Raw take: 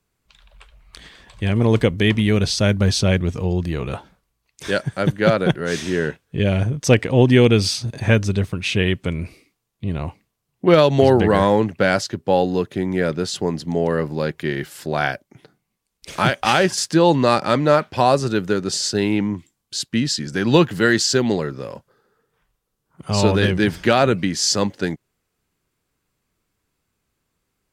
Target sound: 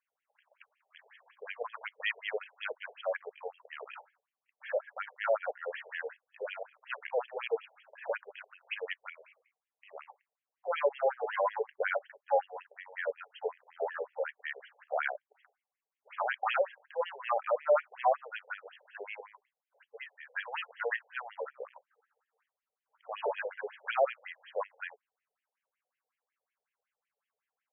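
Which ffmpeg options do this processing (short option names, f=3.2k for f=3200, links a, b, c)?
-af "asoftclip=type=tanh:threshold=-7dB,aeval=exprs='0.447*(cos(1*acos(clip(val(0)/0.447,-1,1)))-cos(1*PI/2))+0.00708*(cos(2*acos(clip(val(0)/0.447,-1,1)))-cos(2*PI/2))':c=same,afftfilt=real='re*between(b*sr/1024,580*pow(2400/580,0.5+0.5*sin(2*PI*5.4*pts/sr))/1.41,580*pow(2400/580,0.5+0.5*sin(2*PI*5.4*pts/sr))*1.41)':imag='im*between(b*sr/1024,580*pow(2400/580,0.5+0.5*sin(2*PI*5.4*pts/sr))/1.41,580*pow(2400/580,0.5+0.5*sin(2*PI*5.4*pts/sr))*1.41)':win_size=1024:overlap=0.75,volume=-6.5dB"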